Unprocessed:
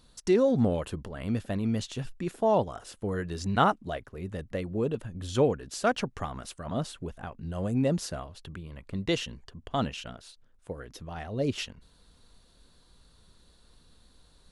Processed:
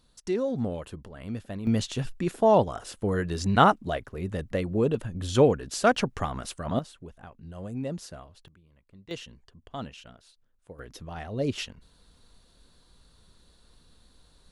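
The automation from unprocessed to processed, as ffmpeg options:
-af "asetnsamples=n=441:p=0,asendcmd='1.67 volume volume 4.5dB;6.79 volume volume -7dB;8.48 volume volume -18.5dB;9.11 volume volume -8dB;10.79 volume volume 0.5dB',volume=-5dB"

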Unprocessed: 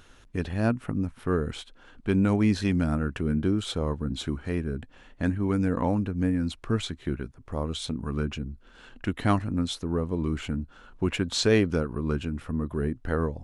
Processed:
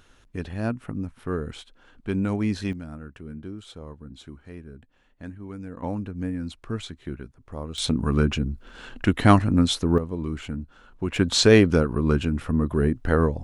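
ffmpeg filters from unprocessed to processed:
-af "asetnsamples=n=441:p=0,asendcmd='2.73 volume volume -12dB;5.83 volume volume -4dB;7.78 volume volume 8dB;9.98 volume volume -1.5dB;11.16 volume volume 6.5dB',volume=-2.5dB"

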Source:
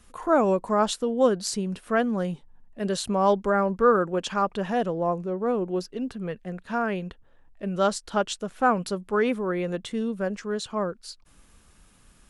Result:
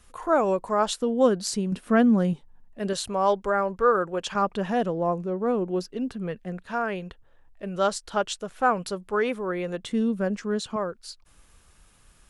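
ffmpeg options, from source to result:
-af "asetnsamples=n=441:p=0,asendcmd='1.02 equalizer g 2;1.72 equalizer g 8.5;2.33 equalizer g -1.5;2.93 equalizer g -9;4.35 equalizer g 1.5;6.65 equalizer g -5.5;9.84 equalizer g 4.5;10.76 equalizer g -7',equalizer=f=230:t=o:w=1:g=-6"

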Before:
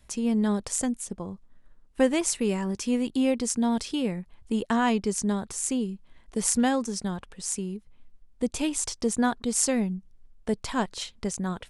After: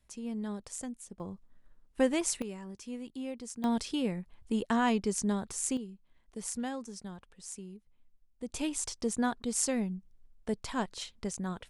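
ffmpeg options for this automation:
-af "asetnsamples=n=441:p=0,asendcmd='1.2 volume volume -5dB;2.42 volume volume -15dB;3.64 volume volume -4dB;5.77 volume volume -13dB;8.49 volume volume -6dB',volume=-12.5dB"

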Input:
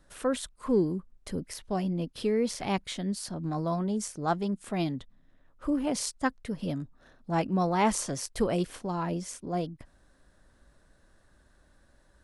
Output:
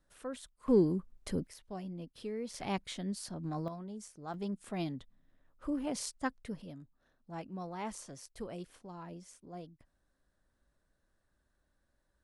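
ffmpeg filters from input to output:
-af "asetnsamples=n=441:p=0,asendcmd='0.68 volume volume -1dB;1.47 volume volume -12.5dB;2.54 volume volume -6dB;3.68 volume volume -14.5dB;4.34 volume volume -7dB;6.62 volume volume -15.5dB',volume=-13dB"

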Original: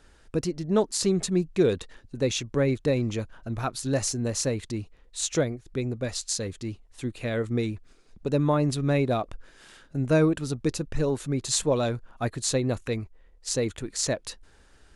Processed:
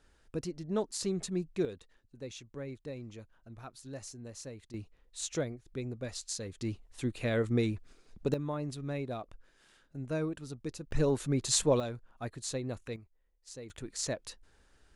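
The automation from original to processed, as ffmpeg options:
-af "asetnsamples=n=441:p=0,asendcmd='1.65 volume volume -18dB;4.74 volume volume -9dB;6.61 volume volume -2dB;8.34 volume volume -13dB;10.91 volume volume -2.5dB;11.8 volume volume -11dB;12.96 volume volume -19.5dB;13.7 volume volume -8dB',volume=-9.5dB"

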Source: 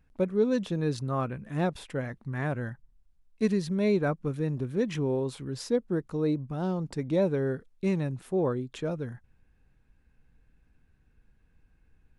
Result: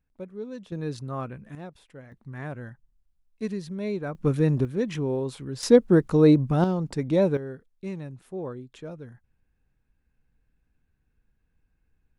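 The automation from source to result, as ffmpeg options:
-af "asetnsamples=n=441:p=0,asendcmd='0.72 volume volume -3dB;1.55 volume volume -13dB;2.12 volume volume -5dB;4.15 volume volume 8dB;4.65 volume volume 1dB;5.63 volume volume 11dB;6.64 volume volume 4dB;7.37 volume volume -7dB',volume=-11.5dB"

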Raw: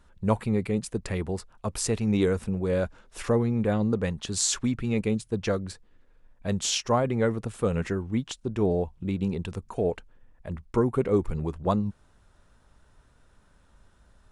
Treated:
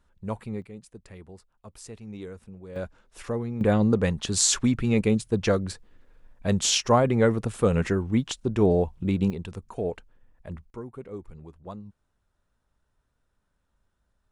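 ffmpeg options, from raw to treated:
-af "asetnsamples=n=441:p=0,asendcmd='0.62 volume volume -15.5dB;2.76 volume volume -6dB;3.61 volume volume 4dB;9.3 volume volume -3dB;10.7 volume volume -15dB',volume=-8dB"

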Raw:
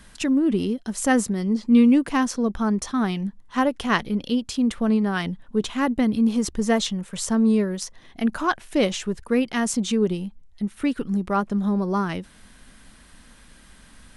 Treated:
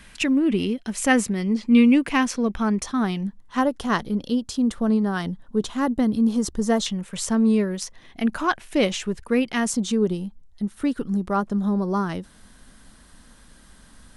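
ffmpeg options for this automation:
-af "asetnsamples=n=441:p=0,asendcmd='2.83 equalizer g -1;3.61 equalizer g -9;6.86 equalizer g 2.5;9.7 equalizer g -6.5',equalizer=f=2.4k:t=o:w=0.74:g=9"

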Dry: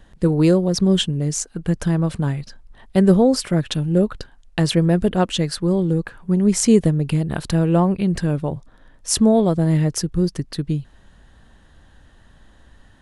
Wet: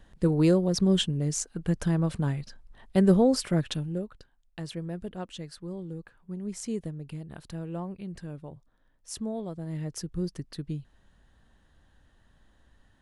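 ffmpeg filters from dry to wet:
-af "volume=0.5dB,afade=t=out:st=3.63:d=0.41:silence=0.237137,afade=t=in:st=9.66:d=0.48:silence=0.446684"

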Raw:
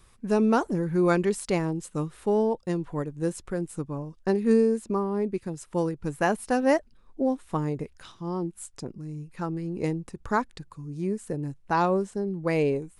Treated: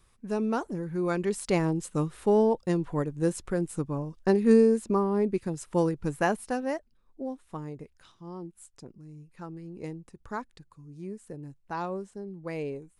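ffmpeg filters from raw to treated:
-af "volume=1.5dB,afade=t=in:st=1.13:d=0.53:silence=0.398107,afade=t=out:st=5.96:d=0.76:silence=0.266073"

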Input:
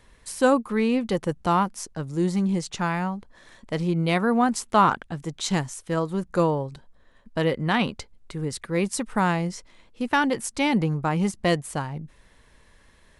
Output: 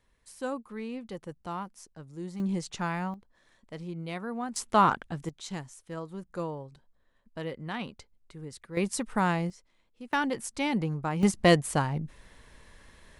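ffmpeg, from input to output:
-af "asetnsamples=n=441:p=0,asendcmd='2.4 volume volume -6dB;3.14 volume volume -14dB;4.56 volume volume -3.5dB;5.29 volume volume -13dB;8.77 volume volume -4dB;9.5 volume volume -16dB;10.13 volume volume -6.5dB;11.23 volume volume 2dB',volume=-15dB"

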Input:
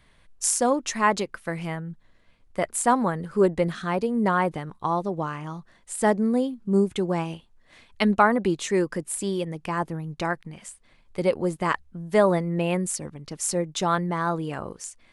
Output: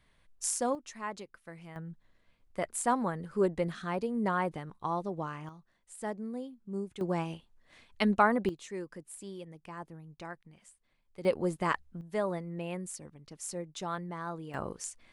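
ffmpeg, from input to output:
-af "asetnsamples=n=441:p=0,asendcmd='0.75 volume volume -17.5dB;1.76 volume volume -8dB;5.49 volume volume -16dB;7.01 volume volume -6dB;8.49 volume volume -16.5dB;11.25 volume volume -5.5dB;12.01 volume volume -13dB;14.54 volume volume -3dB',volume=-9dB"

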